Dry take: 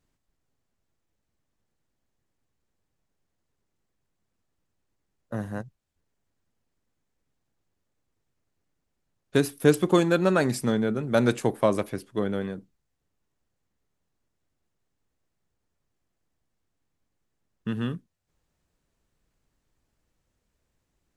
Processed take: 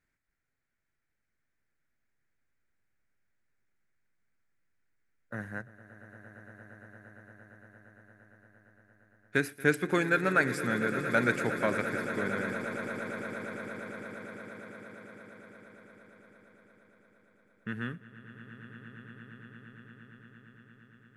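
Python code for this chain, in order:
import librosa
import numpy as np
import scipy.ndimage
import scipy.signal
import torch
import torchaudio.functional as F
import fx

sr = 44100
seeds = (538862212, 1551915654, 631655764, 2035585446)

y = fx.band_shelf(x, sr, hz=1800.0, db=13.0, octaves=1.0)
y = fx.echo_swell(y, sr, ms=115, loudest=8, wet_db=-16)
y = y * librosa.db_to_amplitude(-8.5)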